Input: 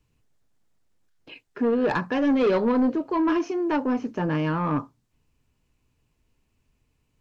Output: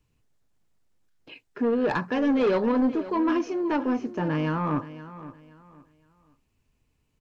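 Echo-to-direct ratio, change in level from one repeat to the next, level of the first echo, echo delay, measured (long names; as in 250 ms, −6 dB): −14.5 dB, −11.0 dB, −15.0 dB, 519 ms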